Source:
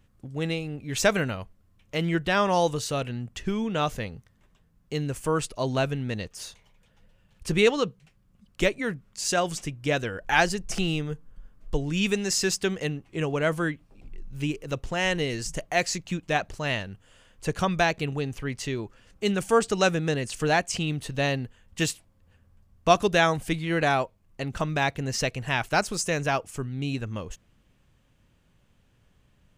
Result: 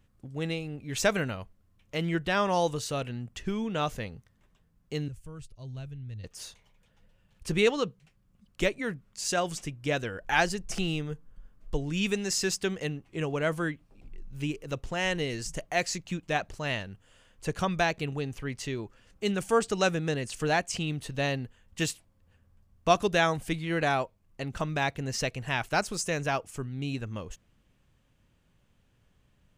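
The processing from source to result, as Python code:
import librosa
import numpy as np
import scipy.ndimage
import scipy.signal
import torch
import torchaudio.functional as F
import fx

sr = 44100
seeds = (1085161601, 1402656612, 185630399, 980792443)

y = fx.curve_eq(x, sr, hz=(110.0, 210.0, 930.0, 3300.0), db=(0, -16, -24, -17), at=(5.08, 6.24))
y = F.gain(torch.from_numpy(y), -3.5).numpy()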